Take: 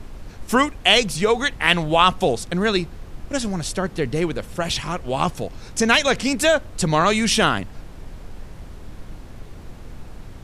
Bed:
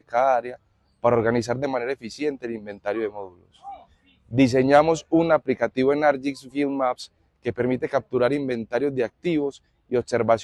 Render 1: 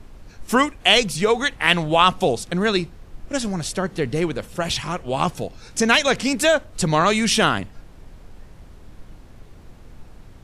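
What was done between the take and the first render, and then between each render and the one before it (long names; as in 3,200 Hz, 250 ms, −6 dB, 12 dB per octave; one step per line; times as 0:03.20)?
noise reduction from a noise print 6 dB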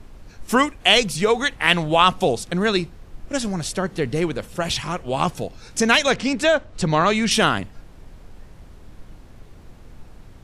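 0:06.14–0:07.31: high-frequency loss of the air 75 metres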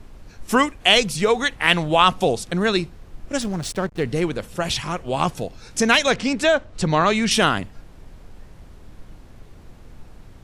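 0:03.41–0:04.03: slack as between gear wheels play −30.5 dBFS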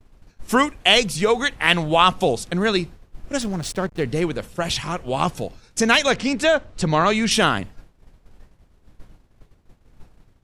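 downward expander −32 dBFS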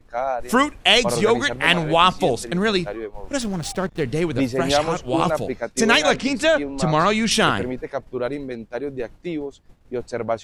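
mix in bed −4.5 dB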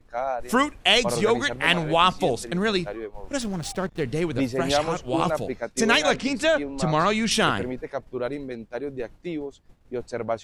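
level −3.5 dB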